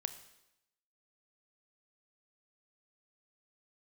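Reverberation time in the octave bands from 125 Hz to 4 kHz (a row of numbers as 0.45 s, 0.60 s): 0.85 s, 0.90 s, 0.85 s, 0.85 s, 0.85 s, 0.85 s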